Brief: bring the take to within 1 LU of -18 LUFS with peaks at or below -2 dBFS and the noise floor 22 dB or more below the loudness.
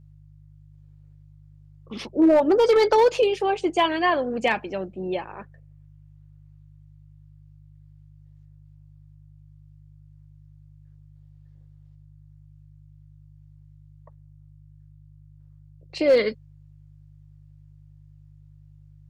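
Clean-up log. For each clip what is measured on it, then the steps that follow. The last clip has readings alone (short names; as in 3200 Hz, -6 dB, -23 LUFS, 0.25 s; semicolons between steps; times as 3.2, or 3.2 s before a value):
clipped 0.2%; flat tops at -11.5 dBFS; hum 50 Hz; harmonics up to 150 Hz; hum level -48 dBFS; loudness -21.5 LUFS; peak -11.5 dBFS; loudness target -18.0 LUFS
-> clip repair -11.5 dBFS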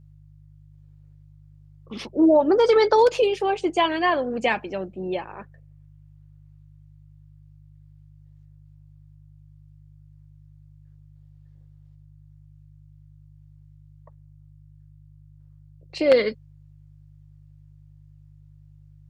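clipped 0.0%; hum 50 Hz; harmonics up to 150 Hz; hum level -48 dBFS
-> de-hum 50 Hz, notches 3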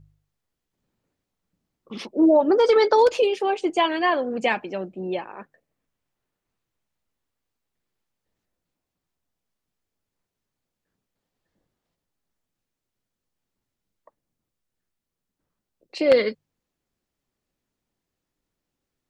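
hum none; loudness -21.0 LUFS; peak -2.5 dBFS; loudness target -18.0 LUFS
-> gain +3 dB; limiter -2 dBFS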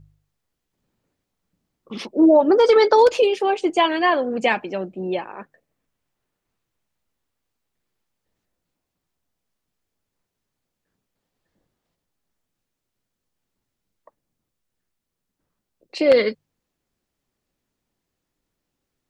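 loudness -18.0 LUFS; peak -2.0 dBFS; noise floor -81 dBFS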